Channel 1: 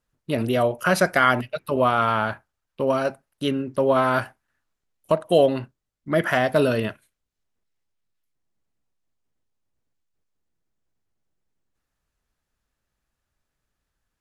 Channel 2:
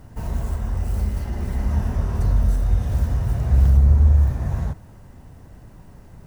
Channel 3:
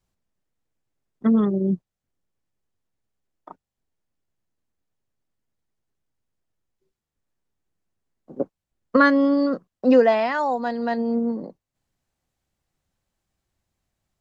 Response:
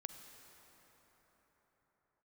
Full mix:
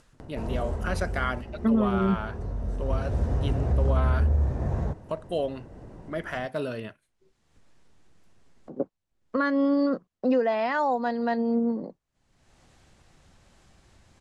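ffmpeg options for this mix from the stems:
-filter_complex "[0:a]volume=0.266[s0];[1:a]equalizer=f=430:w=0.73:g=11,adelay=200,volume=1.33,afade=t=out:st=0.86:d=0.6:silence=0.398107,afade=t=in:st=2.58:d=0.75:silence=0.334965[s1];[2:a]adelay=400,volume=0.841[s2];[s1][s2]amix=inputs=2:normalize=0,highshelf=f=7700:g=-8,alimiter=limit=0.168:level=0:latency=1:release=273,volume=1[s3];[s0][s3]amix=inputs=2:normalize=0,acompressor=mode=upward:threshold=0.0126:ratio=2.5,lowpass=f=10000:w=0.5412,lowpass=f=10000:w=1.3066"

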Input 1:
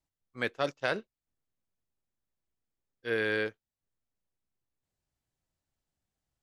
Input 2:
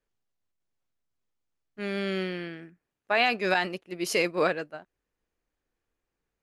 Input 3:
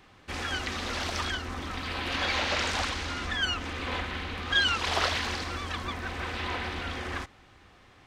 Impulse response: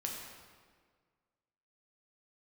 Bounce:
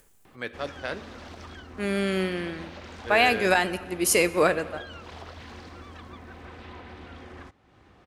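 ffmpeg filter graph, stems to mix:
-filter_complex "[0:a]volume=0.596,asplit=2[s0][s1];[s1]volume=0.335[s2];[1:a]highshelf=f=6400:t=q:w=1.5:g=9,volume=1.33,asplit=2[s3][s4];[s4]volume=0.251[s5];[2:a]highpass=f=97:p=1,tiltshelf=f=1100:g=5.5,acrossover=split=240[s6][s7];[s7]acompressor=threshold=0.0251:ratio=6[s8];[s6][s8]amix=inputs=2:normalize=0,adelay=250,volume=0.335[s9];[3:a]atrim=start_sample=2205[s10];[s2][s5]amix=inputs=2:normalize=0[s11];[s11][s10]afir=irnorm=-1:irlink=0[s12];[s0][s3][s9][s12]amix=inputs=4:normalize=0,acompressor=mode=upward:threshold=0.00501:ratio=2.5"

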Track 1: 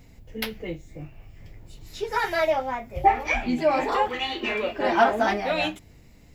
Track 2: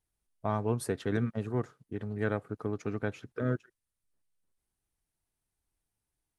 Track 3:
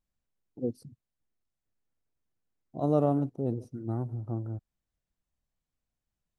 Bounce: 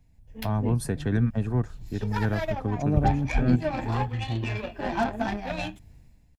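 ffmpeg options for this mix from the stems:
-filter_complex "[0:a]lowshelf=f=200:g=9,aeval=exprs='0.447*(cos(1*acos(clip(val(0)/0.447,-1,1)))-cos(1*PI/2))+0.0398*(cos(7*acos(clip(val(0)/0.447,-1,1)))-cos(7*PI/2))':c=same,volume=0.316[s0];[1:a]volume=0.708[s1];[2:a]volume=0.422[s2];[s0][s1][s2]amix=inputs=3:normalize=0,acrossover=split=280[s3][s4];[s4]acompressor=threshold=0.00501:ratio=2[s5];[s3][s5]amix=inputs=2:normalize=0,aecho=1:1:1.2:0.33,dynaudnorm=f=110:g=7:m=3.35"

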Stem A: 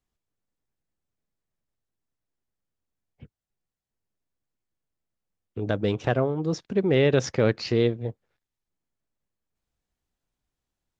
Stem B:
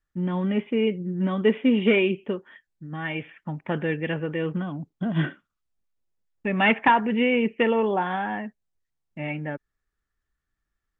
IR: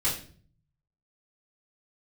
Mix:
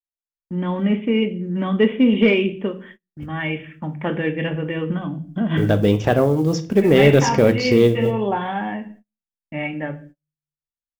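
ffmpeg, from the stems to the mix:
-filter_complex "[0:a]bandreject=f=4000:w=6.2,dynaudnorm=f=760:g=7:m=3.16,acrusher=bits=8:mode=log:mix=0:aa=0.000001,volume=0.631,asplit=3[s0][s1][s2];[s1]volume=0.133[s3];[1:a]adelay=350,volume=0.75,asplit=2[s4][s5];[s5]volume=0.188[s6];[s2]apad=whole_len=500140[s7];[s4][s7]sidechaincompress=threshold=0.0251:ratio=8:attack=16:release=276[s8];[2:a]atrim=start_sample=2205[s9];[s3][s6]amix=inputs=2:normalize=0[s10];[s10][s9]afir=irnorm=-1:irlink=0[s11];[s0][s8][s11]amix=inputs=3:normalize=0,acontrast=41,agate=range=0.0224:threshold=0.00708:ratio=16:detection=peak,adynamicequalizer=threshold=0.0224:dfrequency=1400:dqfactor=0.99:tfrequency=1400:tqfactor=0.99:attack=5:release=100:ratio=0.375:range=2.5:mode=cutabove:tftype=bell"

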